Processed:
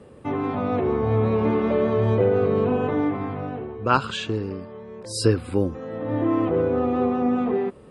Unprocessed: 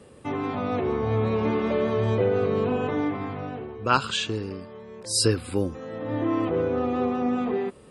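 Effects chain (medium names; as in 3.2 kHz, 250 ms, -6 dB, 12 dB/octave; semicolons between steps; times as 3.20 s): treble shelf 2.7 kHz -11.5 dB; trim +3.5 dB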